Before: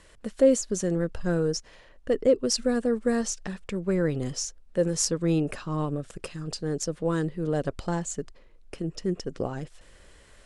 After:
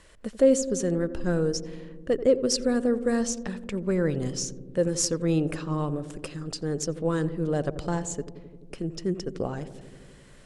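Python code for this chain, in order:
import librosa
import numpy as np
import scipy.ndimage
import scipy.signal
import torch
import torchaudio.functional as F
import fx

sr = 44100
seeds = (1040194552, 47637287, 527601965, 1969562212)

y = fx.echo_filtered(x, sr, ms=86, feedback_pct=84, hz=890.0, wet_db=-13)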